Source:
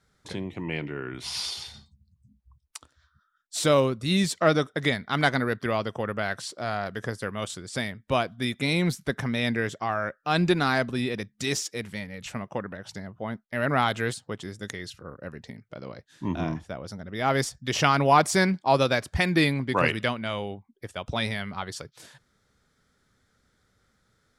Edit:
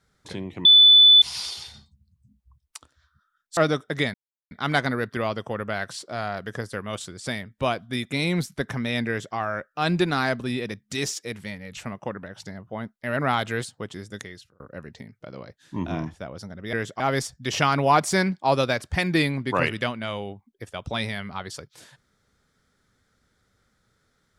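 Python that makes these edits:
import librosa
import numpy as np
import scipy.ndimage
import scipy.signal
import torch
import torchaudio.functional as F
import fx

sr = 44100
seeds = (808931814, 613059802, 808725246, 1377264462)

y = fx.edit(x, sr, fx.bleep(start_s=0.65, length_s=0.57, hz=3490.0, db=-9.0),
    fx.cut(start_s=3.57, length_s=0.86),
    fx.insert_silence(at_s=5.0, length_s=0.37),
    fx.duplicate(start_s=9.57, length_s=0.27, to_s=17.22),
    fx.fade_out_span(start_s=14.62, length_s=0.47), tone=tone)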